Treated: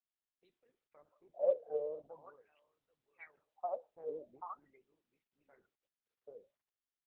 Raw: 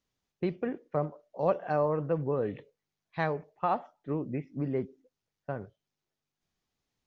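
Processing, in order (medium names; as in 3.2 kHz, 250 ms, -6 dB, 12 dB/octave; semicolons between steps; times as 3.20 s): resonances exaggerated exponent 1.5; level-controlled noise filter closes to 750 Hz, open at -25.5 dBFS; band-stop 1.8 kHz, Q 10; delay 786 ms -6 dB; wah-wah 0.44 Hz 450–3800 Hz, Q 20; 2.41–3.37 s: peaking EQ 300 Hz -9 dB 2.9 oct; trim +4 dB; Opus 8 kbps 48 kHz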